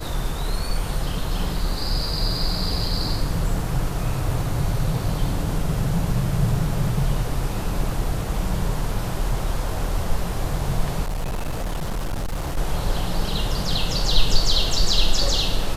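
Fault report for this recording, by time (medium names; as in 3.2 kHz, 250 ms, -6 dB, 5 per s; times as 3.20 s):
11.04–12.58 s: clipped -22 dBFS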